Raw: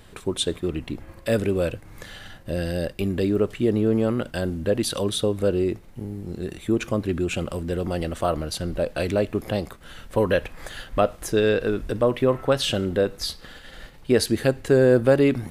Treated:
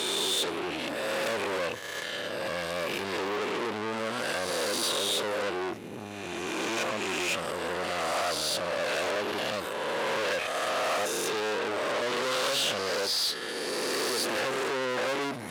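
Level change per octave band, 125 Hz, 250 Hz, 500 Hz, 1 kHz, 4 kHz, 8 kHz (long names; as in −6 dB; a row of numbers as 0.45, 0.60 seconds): −19.0, −12.5, −8.0, +2.0, +2.5, +2.0 decibels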